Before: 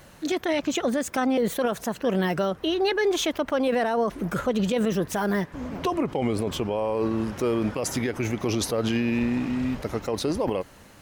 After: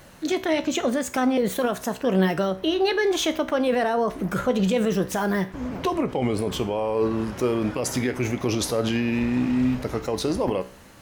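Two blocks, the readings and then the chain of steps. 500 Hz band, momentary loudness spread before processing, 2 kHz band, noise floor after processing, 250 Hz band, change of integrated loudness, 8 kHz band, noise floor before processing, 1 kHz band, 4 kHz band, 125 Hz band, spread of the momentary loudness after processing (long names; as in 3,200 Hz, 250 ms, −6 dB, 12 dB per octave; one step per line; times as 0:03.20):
+1.5 dB, 5 LU, +1.5 dB, −45 dBFS, +2.0 dB, +1.5 dB, +1.5 dB, −50 dBFS, +1.5 dB, +1.5 dB, +2.0 dB, 5 LU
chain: tuned comb filter 63 Hz, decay 0.4 s, harmonics all, mix 60%
level +6.5 dB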